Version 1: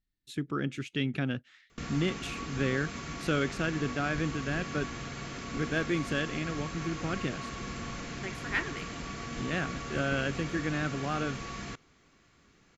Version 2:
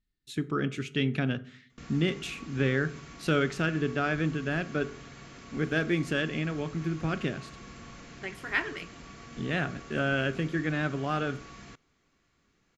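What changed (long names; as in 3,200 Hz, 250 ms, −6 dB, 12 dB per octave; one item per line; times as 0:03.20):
background −8.0 dB
reverb: on, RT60 0.50 s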